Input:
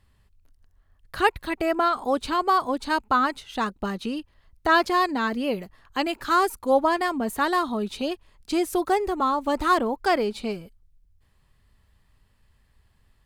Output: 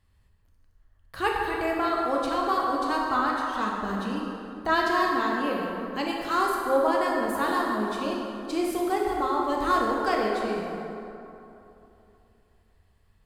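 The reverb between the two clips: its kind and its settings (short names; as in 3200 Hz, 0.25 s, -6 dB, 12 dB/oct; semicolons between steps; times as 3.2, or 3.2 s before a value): plate-style reverb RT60 3 s, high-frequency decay 0.5×, DRR -2.5 dB; gain -6.5 dB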